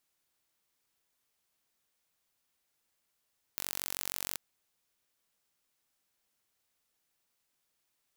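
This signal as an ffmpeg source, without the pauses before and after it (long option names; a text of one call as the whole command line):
ffmpeg -f lavfi -i "aevalsrc='0.376*eq(mod(n,952),0)':duration=0.79:sample_rate=44100" out.wav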